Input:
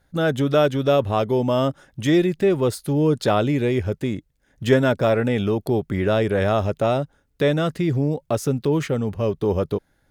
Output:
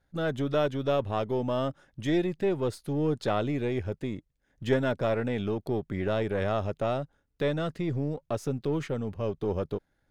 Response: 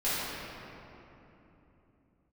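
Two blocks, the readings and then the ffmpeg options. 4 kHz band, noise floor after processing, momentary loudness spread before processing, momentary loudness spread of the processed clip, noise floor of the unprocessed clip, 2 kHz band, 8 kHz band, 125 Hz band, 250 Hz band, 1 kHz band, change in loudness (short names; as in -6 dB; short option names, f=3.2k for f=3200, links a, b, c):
-9.5 dB, -75 dBFS, 7 LU, 7 LU, -66 dBFS, -9.0 dB, under -10 dB, -9.0 dB, -9.0 dB, -8.0 dB, -9.0 dB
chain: -af "aeval=exprs='if(lt(val(0),0),0.708*val(0),val(0))':c=same,highshelf=f=9.1k:g=-10.5,volume=-7.5dB"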